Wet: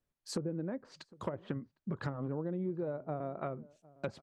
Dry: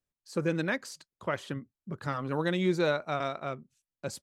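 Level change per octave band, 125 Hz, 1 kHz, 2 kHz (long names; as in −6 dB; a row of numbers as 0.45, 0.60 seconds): −4.0, −9.5, −16.5 decibels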